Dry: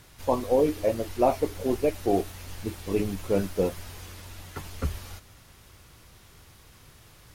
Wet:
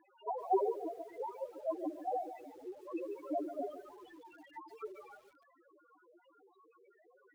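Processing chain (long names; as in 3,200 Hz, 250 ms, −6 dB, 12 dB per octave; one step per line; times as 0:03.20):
stylus tracing distortion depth 0.05 ms
gate on every frequency bin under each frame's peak −10 dB weak
high-pass filter 280 Hz 24 dB per octave
0:00.68–0:01.66: downward compressor 6 to 1, threshold −37 dBFS, peak gain reduction 9.5 dB
0:02.27–0:02.73: low-shelf EQ 410 Hz +3.5 dB
bit reduction 10 bits
0:03.70–0:04.13: all-pass dispersion lows, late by 56 ms, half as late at 850 Hz
spectral peaks only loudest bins 1
head-to-tape spacing loss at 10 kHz 27 dB
feedback echo at a low word length 144 ms, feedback 35%, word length 12 bits, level −11 dB
level +13.5 dB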